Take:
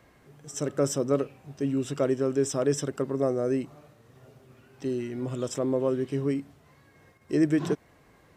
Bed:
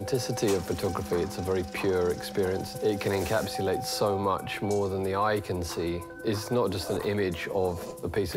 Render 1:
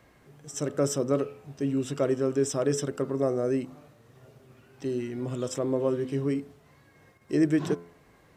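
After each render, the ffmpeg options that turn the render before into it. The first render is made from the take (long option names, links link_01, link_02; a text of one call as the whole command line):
ffmpeg -i in.wav -af "bandreject=frequency=85.53:width_type=h:width=4,bandreject=frequency=171.06:width_type=h:width=4,bandreject=frequency=256.59:width_type=h:width=4,bandreject=frequency=342.12:width_type=h:width=4,bandreject=frequency=427.65:width_type=h:width=4,bandreject=frequency=513.18:width_type=h:width=4,bandreject=frequency=598.71:width_type=h:width=4,bandreject=frequency=684.24:width_type=h:width=4,bandreject=frequency=769.77:width_type=h:width=4,bandreject=frequency=855.3:width_type=h:width=4,bandreject=frequency=940.83:width_type=h:width=4,bandreject=frequency=1026.36:width_type=h:width=4,bandreject=frequency=1111.89:width_type=h:width=4,bandreject=frequency=1197.42:width_type=h:width=4,bandreject=frequency=1282.95:width_type=h:width=4,bandreject=frequency=1368.48:width_type=h:width=4,bandreject=frequency=1454.01:width_type=h:width=4,bandreject=frequency=1539.54:width_type=h:width=4" out.wav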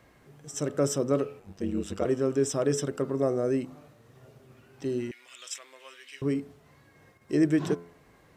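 ffmpeg -i in.wav -filter_complex "[0:a]asettb=1/sr,asplit=3[link_01][link_02][link_03];[link_01]atrim=end=1.394[link_04];[link_02]atrim=start=1.39:end=2.06,asetpts=PTS-STARTPTS,afade=type=in:duration=0.004:curve=qsin,afade=type=out:start_time=0.666:duration=0.004:curve=qsin,aeval=exprs='val(0)*sin(2*PI*50*n/s)':channel_layout=same[link_05];[link_03]atrim=start=2.056[link_06];[link_04][link_05]acrossfade=duration=0.004:curve1=hsin:curve2=qsin[link_07];[link_07][link_06]acrossfade=duration=0.004:curve1=qsin:curve2=hsin,asettb=1/sr,asplit=3[link_08][link_09][link_10];[link_08]atrim=end=5.114[link_11];[link_09]atrim=start=5.11:end=6.22,asetpts=PTS-STARTPTS,afade=type=in:duration=0.004:curve=qsin,afade=type=out:start_time=1.106:duration=0.004:curve=qsin,highpass=frequency=2300:width_type=q:width=2[link_12];[link_10]atrim=start=6.216[link_13];[link_11][link_12]acrossfade=duration=0.004:curve1=hsin:curve2=qsin[link_14];[link_14][link_13]acrossfade=duration=0.004:curve1=qsin:curve2=hsin" out.wav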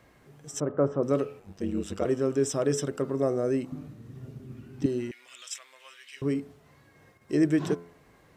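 ffmpeg -i in.wav -filter_complex "[0:a]asettb=1/sr,asplit=3[link_01][link_02][link_03];[link_01]atrim=end=0.604[link_04];[link_02]atrim=start=0.6:end=1.03,asetpts=PTS-STARTPTS,afade=type=in:duration=0.004:curve=qsin,afade=type=out:start_time=0.426:duration=0.004:curve=qsin,lowpass=frequency=1100:width_type=q:width=1.5[link_05];[link_03]atrim=start=1.026[link_06];[link_04][link_05]acrossfade=duration=0.004:curve1=hsin:curve2=qsin[link_07];[link_07][link_06]acrossfade=duration=0.004:curve1=qsin:curve2=hsin,asettb=1/sr,asplit=3[link_08][link_09][link_10];[link_08]atrim=end=3.724[link_11];[link_09]atrim=start=3.72:end=4.86,asetpts=PTS-STARTPTS,afade=type=in:duration=0.004:curve=qsin,afade=type=out:start_time=1.136:duration=0.004:curve=qsin,lowshelf=frequency=390:width_type=q:width=1.5:gain=11.5[link_12];[link_10]atrim=start=4.856[link_13];[link_11][link_12]acrossfade=duration=0.004:curve1=hsin:curve2=qsin[link_14];[link_14][link_13]acrossfade=duration=0.004:curve1=qsin:curve2=hsin,asettb=1/sr,asplit=3[link_15][link_16][link_17];[link_15]atrim=end=5.424[link_18];[link_16]atrim=start=5.42:end=6.17,asetpts=PTS-STARTPTS,afade=type=in:duration=0.004:curve=qsin,afade=type=out:start_time=0.746:duration=0.004:curve=qsin,equalizer=frequency=310:width_type=o:width=1.7:gain=-11.5[link_19];[link_17]atrim=start=6.166[link_20];[link_18][link_19]acrossfade=duration=0.004:curve1=hsin:curve2=qsin[link_21];[link_21][link_20]acrossfade=duration=0.004:curve1=qsin:curve2=hsin" out.wav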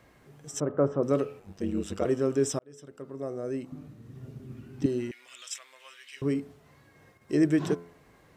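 ffmpeg -i in.wav -filter_complex "[0:a]asplit=2[link_01][link_02];[link_01]atrim=end=2.59,asetpts=PTS-STARTPTS,afade=type=out:start_time=2.586:duration=0.004:curve=hsin[link_03];[link_02]atrim=start=2.59,asetpts=PTS-STARTPTS,afade=type=in:duration=1.88[link_04];[link_03][link_04]concat=n=2:v=0:a=1" out.wav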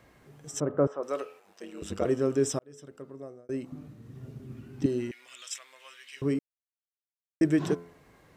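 ffmpeg -i in.wav -filter_complex "[0:a]asettb=1/sr,asplit=3[link_01][link_02][link_03];[link_01]atrim=end=0.874[link_04];[link_02]atrim=start=0.87:end=1.82,asetpts=PTS-STARTPTS,afade=type=in:duration=0.004:curve=qsin,afade=type=out:start_time=0.946:duration=0.004:curve=qsin,highpass=640[link_05];[link_03]atrim=start=1.816[link_06];[link_04][link_05]acrossfade=duration=0.004:curve1=hsin:curve2=qsin[link_07];[link_07][link_06]acrossfade=duration=0.004:curve1=qsin:curve2=hsin,asplit=4[link_08][link_09][link_10][link_11];[link_08]atrim=end=3.49,asetpts=PTS-STARTPTS,afade=type=out:start_time=2.91:duration=0.58[link_12];[link_09]atrim=start=3.49:end=6.39,asetpts=PTS-STARTPTS,afade=type=in:duration=0.004:curve=hsin,afade=type=out:start_time=2.896:duration=0.004:curve=hsin[link_13];[link_10]atrim=start=6.39:end=7.41,asetpts=PTS-STARTPTS,volume=0[link_14];[link_11]atrim=start=7.41,asetpts=PTS-STARTPTS,afade=type=in:duration=0.004:curve=hsin[link_15];[link_12][link_13][link_14][link_15]concat=n=4:v=0:a=1" out.wav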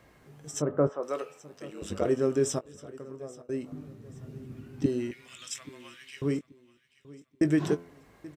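ffmpeg -i in.wav -filter_complex "[0:a]asplit=2[link_01][link_02];[link_02]adelay=20,volume=-12dB[link_03];[link_01][link_03]amix=inputs=2:normalize=0,aecho=1:1:831|1662|2493:0.1|0.033|0.0109" out.wav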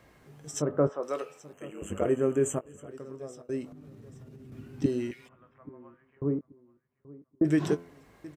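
ffmpeg -i in.wav -filter_complex "[0:a]asettb=1/sr,asplit=3[link_01][link_02][link_03];[link_01]atrim=end=1.534[link_04];[link_02]atrim=start=1.53:end=2.91,asetpts=PTS-STARTPTS,afade=type=in:duration=0.004:curve=qsin,afade=type=out:start_time=1.376:duration=0.004:curve=qsin,asuperstop=centerf=4500:order=20:qfactor=1.5[link_05];[link_03]atrim=start=2.906[link_06];[link_04][link_05]acrossfade=duration=0.004:curve1=hsin:curve2=qsin[link_07];[link_07][link_06]acrossfade=duration=0.004:curve1=qsin:curve2=hsin,asettb=1/sr,asplit=3[link_08][link_09][link_10];[link_08]atrim=end=3.684[link_11];[link_09]atrim=start=3.68:end=4.52,asetpts=PTS-STARTPTS,afade=type=in:duration=0.004:curve=qsin,afade=type=out:start_time=0.836:duration=0.004:curve=qsin,acompressor=threshold=-44dB:ratio=12:attack=3.2:release=140:knee=1:detection=peak[link_12];[link_10]atrim=start=4.516[link_13];[link_11][link_12]acrossfade=duration=0.004:curve1=hsin:curve2=qsin[link_14];[link_14][link_13]acrossfade=duration=0.004:curve1=qsin:curve2=hsin,asplit=3[link_15][link_16][link_17];[link_15]afade=type=out:start_time=5.27:duration=0.02[link_18];[link_16]lowpass=frequency=1100:width=0.5412,lowpass=frequency=1100:width=1.3066,afade=type=in:start_time=5.27:duration=0.02,afade=type=out:start_time=7.44:duration=0.02[link_19];[link_17]afade=type=in:start_time=7.44:duration=0.02[link_20];[link_18][link_19][link_20]amix=inputs=3:normalize=0" out.wav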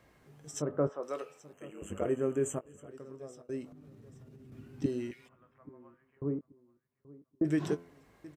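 ffmpeg -i in.wav -af "volume=-5dB" out.wav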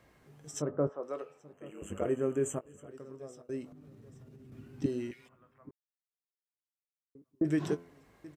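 ffmpeg -i in.wav -filter_complex "[0:a]asettb=1/sr,asplit=3[link_01][link_02][link_03];[link_01]atrim=end=0.704[link_04];[link_02]atrim=start=0.7:end=1.66,asetpts=PTS-STARTPTS,afade=type=in:duration=0.004:curve=qsin,afade=type=out:start_time=0.956:duration=0.004:curve=qsin,highshelf=frequency=2300:gain=-11.5[link_05];[link_03]atrim=start=1.656[link_06];[link_04][link_05]acrossfade=duration=0.004:curve1=hsin:curve2=qsin[link_07];[link_07][link_06]acrossfade=duration=0.004:curve1=qsin:curve2=hsin,asplit=3[link_08][link_09][link_10];[link_08]atrim=end=5.71,asetpts=PTS-STARTPTS,afade=type=out:start_time=5.706:duration=0.004:curve=hsin[link_11];[link_09]atrim=start=5.71:end=7.15,asetpts=PTS-STARTPTS,volume=0[link_12];[link_10]atrim=start=7.15,asetpts=PTS-STARTPTS,afade=type=in:duration=0.004:curve=hsin[link_13];[link_11][link_12][link_13]concat=n=3:v=0:a=1" out.wav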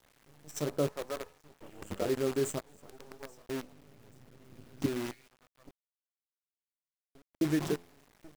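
ffmpeg -i in.wav -af "acrusher=bits=7:dc=4:mix=0:aa=0.000001" out.wav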